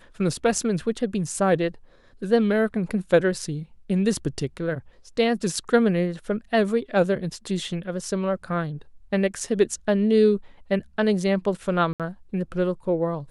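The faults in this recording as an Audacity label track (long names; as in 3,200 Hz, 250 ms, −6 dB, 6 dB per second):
11.930000	12.000000	drop-out 67 ms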